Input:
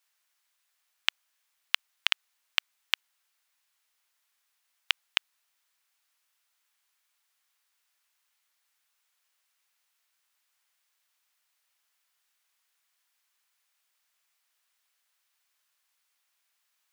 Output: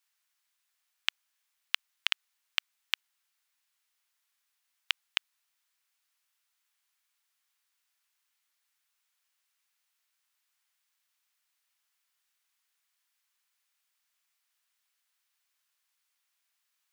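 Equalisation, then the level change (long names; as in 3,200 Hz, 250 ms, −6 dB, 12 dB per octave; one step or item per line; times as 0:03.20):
high-pass filter 750 Hz 6 dB per octave
−3.0 dB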